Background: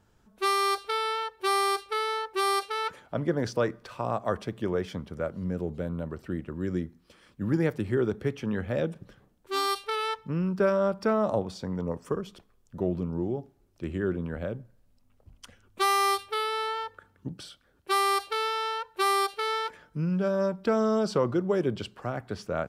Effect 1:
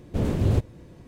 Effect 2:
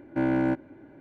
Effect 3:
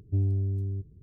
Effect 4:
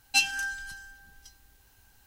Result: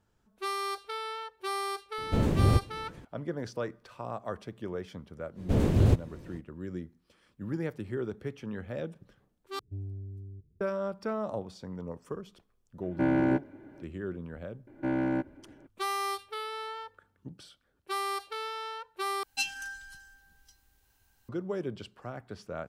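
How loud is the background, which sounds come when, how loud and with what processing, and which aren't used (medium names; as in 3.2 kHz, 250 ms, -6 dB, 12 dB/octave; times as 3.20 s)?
background -8 dB
1.98 s: add 1 -1.5 dB
5.35 s: add 1 -0.5 dB, fades 0.05 s
9.59 s: replace with 3 -13 dB
12.83 s: add 2 -1 dB
14.67 s: add 2 -4.5 dB
19.23 s: replace with 4 -8 dB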